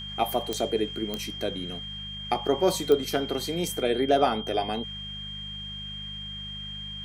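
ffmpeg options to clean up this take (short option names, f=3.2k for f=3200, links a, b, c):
-af "adeclick=t=4,bandreject=f=50.7:t=h:w=4,bandreject=f=101.4:t=h:w=4,bandreject=f=152.1:t=h:w=4,bandreject=f=202.8:t=h:w=4,bandreject=f=3.2k:w=30"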